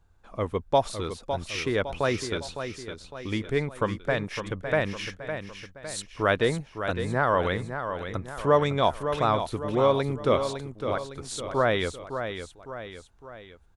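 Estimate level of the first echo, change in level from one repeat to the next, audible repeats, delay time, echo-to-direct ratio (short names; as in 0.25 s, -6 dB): -8.5 dB, -6.0 dB, 3, 0.558 s, -7.5 dB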